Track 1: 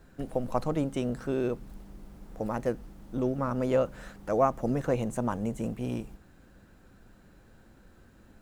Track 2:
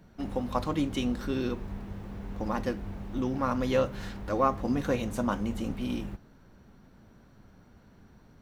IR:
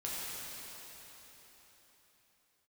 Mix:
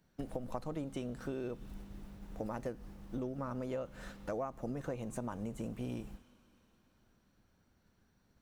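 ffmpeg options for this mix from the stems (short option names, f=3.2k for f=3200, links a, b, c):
-filter_complex "[0:a]agate=range=-33dB:threshold=-43dB:ratio=3:detection=peak,volume=-3dB,asplit=2[a][b];[1:a]highshelf=f=2.3k:g=11.5,volume=-19dB,asplit=2[c][d];[d]volume=-16dB[e];[b]apad=whole_len=371134[f];[c][f]sidechaincompress=threshold=-35dB:ratio=8:attack=16:release=602[g];[2:a]atrim=start_sample=2205[h];[e][h]afir=irnorm=-1:irlink=0[i];[a][g][i]amix=inputs=3:normalize=0,acompressor=threshold=-36dB:ratio=6"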